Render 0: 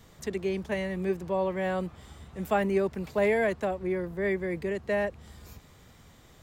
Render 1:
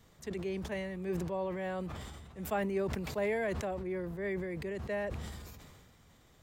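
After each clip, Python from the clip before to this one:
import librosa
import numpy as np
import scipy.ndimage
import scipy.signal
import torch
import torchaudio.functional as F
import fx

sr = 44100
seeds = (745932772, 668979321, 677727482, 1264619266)

y = fx.sustainer(x, sr, db_per_s=30.0)
y = y * 10.0 ** (-8.0 / 20.0)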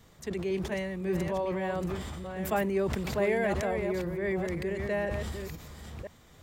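y = fx.reverse_delay(x, sr, ms=506, wet_db=-6.5)
y = y * 10.0 ** (4.5 / 20.0)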